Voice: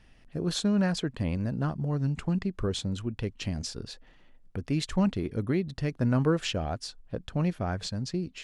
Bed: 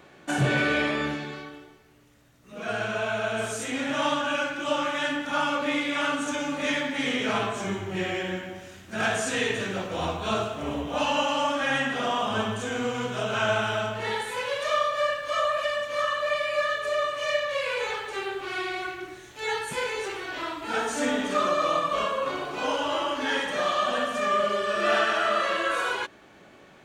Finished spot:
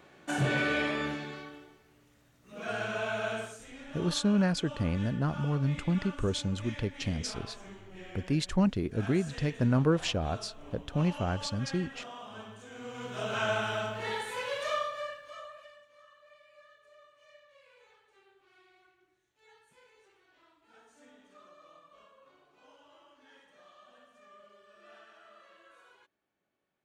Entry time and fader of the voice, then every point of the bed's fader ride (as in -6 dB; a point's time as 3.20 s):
3.60 s, -0.5 dB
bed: 3.33 s -5 dB
3.61 s -18.5 dB
12.68 s -18.5 dB
13.26 s -5.5 dB
14.68 s -5.5 dB
16.00 s -32.5 dB